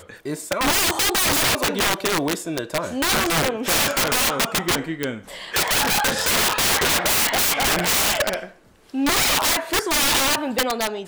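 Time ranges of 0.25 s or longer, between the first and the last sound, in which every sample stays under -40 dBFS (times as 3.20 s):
8.53–8.90 s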